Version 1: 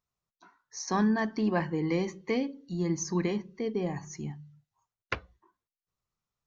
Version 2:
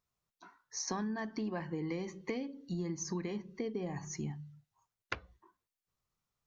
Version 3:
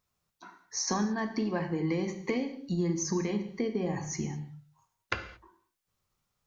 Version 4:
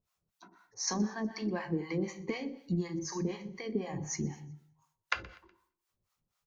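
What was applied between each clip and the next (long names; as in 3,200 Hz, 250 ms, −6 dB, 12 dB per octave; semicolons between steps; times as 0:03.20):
downward compressor 10 to 1, threshold −35 dBFS, peak gain reduction 13.5 dB; level +1 dB
reverb whose tail is shaped and stops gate 250 ms falling, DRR 6.5 dB; level +6 dB
two-band tremolo in antiphase 4 Hz, depth 100%, crossover 610 Hz; repeating echo 123 ms, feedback 42%, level −22 dB; level +1 dB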